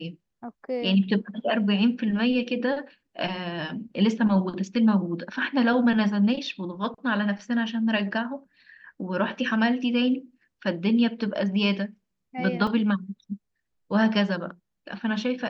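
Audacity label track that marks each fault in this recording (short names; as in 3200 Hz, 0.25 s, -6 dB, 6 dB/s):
12.670000	12.670000	gap 3.5 ms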